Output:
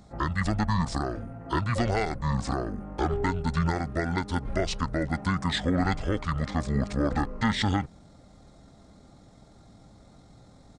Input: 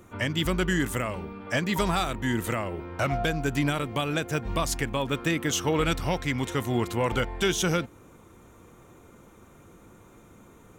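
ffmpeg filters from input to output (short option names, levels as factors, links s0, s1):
-af "asetrate=25476,aresample=44100,atempo=1.73107"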